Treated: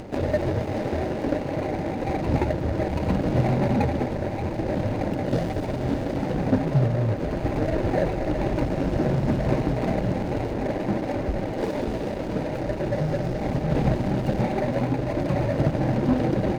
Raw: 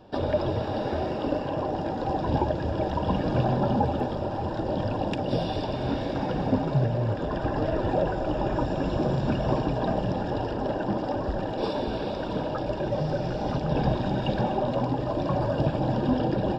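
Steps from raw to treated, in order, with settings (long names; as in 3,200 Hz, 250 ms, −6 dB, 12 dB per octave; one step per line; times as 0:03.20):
running median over 41 samples
upward compression, threshold −32 dBFS
level +3.5 dB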